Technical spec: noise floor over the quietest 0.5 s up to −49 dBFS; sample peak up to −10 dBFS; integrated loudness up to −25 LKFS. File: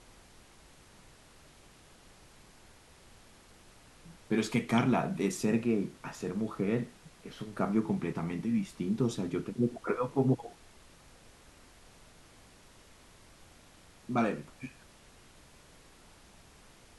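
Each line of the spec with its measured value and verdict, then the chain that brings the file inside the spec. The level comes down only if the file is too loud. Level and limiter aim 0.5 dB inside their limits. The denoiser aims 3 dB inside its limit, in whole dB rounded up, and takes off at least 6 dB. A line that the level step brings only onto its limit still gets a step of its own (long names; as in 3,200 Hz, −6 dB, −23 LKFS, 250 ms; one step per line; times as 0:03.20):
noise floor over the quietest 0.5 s −58 dBFS: in spec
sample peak −14.5 dBFS: in spec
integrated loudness −32.5 LKFS: in spec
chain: no processing needed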